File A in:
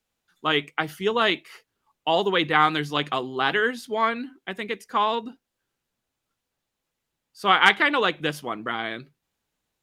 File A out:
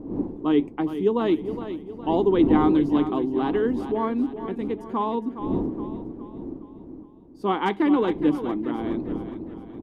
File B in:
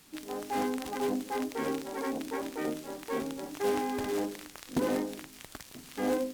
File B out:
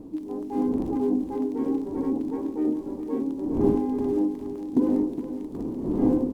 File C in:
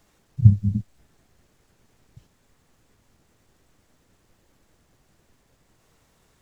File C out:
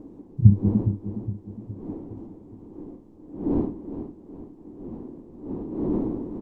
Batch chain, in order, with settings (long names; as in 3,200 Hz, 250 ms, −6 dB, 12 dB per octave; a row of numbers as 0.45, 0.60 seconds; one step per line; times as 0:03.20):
wind on the microphone 400 Hz −38 dBFS
drawn EQ curve 150 Hz 0 dB, 300 Hz +13 dB, 600 Hz −5 dB, 970 Hz −1 dB, 1,400 Hz −15 dB
on a send: repeating echo 414 ms, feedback 47%, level −11 dB
on the sum: level −1 dB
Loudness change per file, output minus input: −1.0, +7.0, −5.5 LU